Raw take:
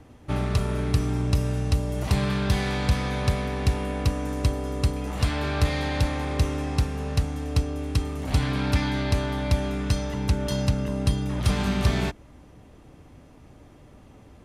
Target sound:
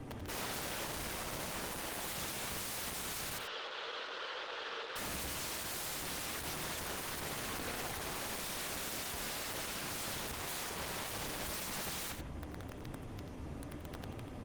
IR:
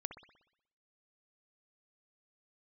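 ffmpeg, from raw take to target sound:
-filter_complex "[0:a]alimiter=limit=-21dB:level=0:latency=1:release=157,asettb=1/sr,asplit=3[a][b][c];[a]atrim=end=8.354[d];[b]atrim=start=8.35:end=9,asetpts=PTS-STARTPTS,afade=t=in:d=0.004:c=qsin,afade=t=out:st=0.646:d=0.004:c=qsin,acompressor=mode=upward:threshold=-33dB:ratio=2.5[e];[c]atrim=start=8.996[f];[d][e]acrossfade=d=0.004:c1=hsin:c2=qsin[g];[g][f]acrossfade=d=0.004:c1=qsin:c2=hsin,asoftclip=type=tanh:threshold=-30.5dB,flanger=delay=7.4:depth=7.4:regen=-7:speed=0.77:shape=triangular,aeval=exprs='(mod(141*val(0)+1,2)-1)/141':c=same,asettb=1/sr,asplit=3[h][i][j];[h]atrim=end=3.384[k];[i]atrim=start=3.38:end=4.96,asetpts=PTS-STARTPTS,afade=t=in:d=0.004:c=qsin,afade=t=out:st=1.576:d=0.004:c=qsin,highpass=f=430:w=0.5412,highpass=f=430:w=1.3066,equalizer=f=480:t=q:w=4:g=7,equalizer=f=720:t=q:w=4:g=-9,equalizer=f=1.4k:t=q:w=4:g=4,equalizer=f=2.2k:t=q:w=4:g=-6,equalizer=f=3.2k:t=q:w=4:g=4,lowpass=f=4.2k:w=0.5412,lowpass=f=4.2k:w=1.3066[l];[j]atrim=start=4.956[m];[k][l]acrossfade=d=0.004:c1=hsin:c2=qsin[n];[n][m]acrossfade=d=0.004:c1=qsin:c2=hsin,aecho=1:1:87:0.376[o];[1:a]atrim=start_sample=2205,atrim=end_sample=3969[p];[o][p]afir=irnorm=-1:irlink=0,volume=11dB" -ar 48000 -c:a libopus -b:a 20k

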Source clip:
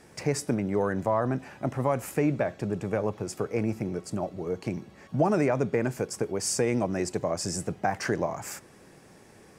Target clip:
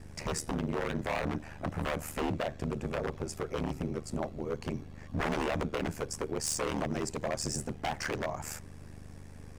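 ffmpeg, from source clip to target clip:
-af "aeval=exprs='val(0)+0.00708*(sin(2*PI*50*n/s)+sin(2*PI*2*50*n/s)/2+sin(2*PI*3*50*n/s)/3+sin(2*PI*4*50*n/s)/4+sin(2*PI*5*50*n/s)/5)':c=same,aeval=exprs='0.0668*(abs(mod(val(0)/0.0668+3,4)-2)-1)':c=same,aeval=exprs='val(0)*sin(2*PI*38*n/s)':c=same"

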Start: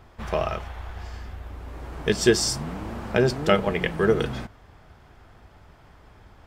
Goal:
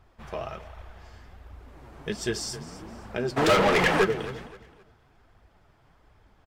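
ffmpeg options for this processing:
-filter_complex "[0:a]asplit=3[a][b][c];[a]afade=t=out:st=3.36:d=0.02[d];[b]asplit=2[e][f];[f]highpass=f=720:p=1,volume=36dB,asoftclip=type=tanh:threshold=-3.5dB[g];[e][g]amix=inputs=2:normalize=0,lowpass=f=3.6k:p=1,volume=-6dB,afade=t=in:st=3.36:d=0.02,afade=t=out:st=4.03:d=0.02[h];[c]afade=t=in:st=4.03:d=0.02[i];[d][h][i]amix=inputs=3:normalize=0,aecho=1:1:262|524|786:0.158|0.0507|0.0162,flanger=delay=0.7:depth=9:regen=44:speed=1.3:shape=triangular,volume=-5dB"

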